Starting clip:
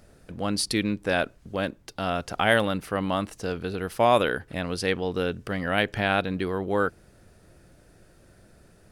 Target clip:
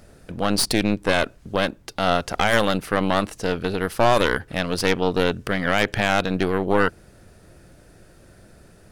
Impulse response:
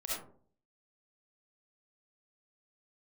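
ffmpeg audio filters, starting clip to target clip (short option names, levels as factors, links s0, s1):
-af "aeval=exprs='0.562*(cos(1*acos(clip(val(0)/0.562,-1,1)))-cos(1*PI/2))+0.0398*(cos(3*acos(clip(val(0)/0.562,-1,1)))-cos(3*PI/2))+0.0562*(cos(8*acos(clip(val(0)/0.562,-1,1)))-cos(8*PI/2))':c=same,alimiter=limit=0.224:level=0:latency=1:release=22,volume=2.37"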